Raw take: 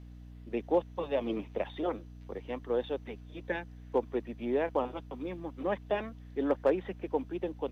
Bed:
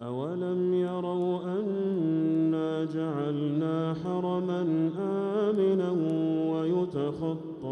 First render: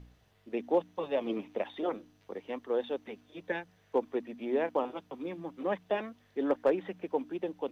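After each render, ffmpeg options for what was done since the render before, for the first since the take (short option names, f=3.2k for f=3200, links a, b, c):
-af "bandreject=f=60:t=h:w=4,bandreject=f=120:t=h:w=4,bandreject=f=180:t=h:w=4,bandreject=f=240:t=h:w=4,bandreject=f=300:t=h:w=4"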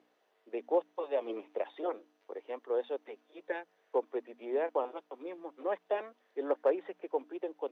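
-af "highpass=f=370:w=0.5412,highpass=f=370:w=1.3066,highshelf=f=2.2k:g=-11"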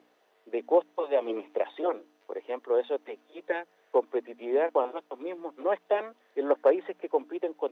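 -af "volume=6.5dB"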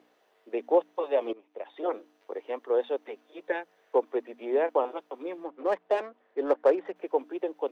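-filter_complex "[0:a]asettb=1/sr,asplit=3[a][b][c];[a]atrim=end=5.444[d];[b]atrim=start=5.44:end=6.96,asetpts=PTS-STARTPTS,afade=t=in:d=0.004:c=qsin,afade=t=out:st=1.516:d=0.004:c=qsin,adynamicsmooth=sensitivity=7.5:basefreq=2.2k[e];[c]atrim=start=6.956[f];[d][e]acrossfade=d=0.004:c1=hsin:c2=qsin[g];[g][f]acrossfade=d=0.004:c1=qsin:c2=hsin,asplit=2[h][i];[h]atrim=end=1.33,asetpts=PTS-STARTPTS,afade=t=out:st=1.326:d=0.004:c=hsin:silence=0.11885[j];[i]atrim=start=1.33,asetpts=PTS-STARTPTS,afade=t=in:d=0.6:c=qua:silence=0.11885[k];[j][k]concat=n=2:v=0:a=1"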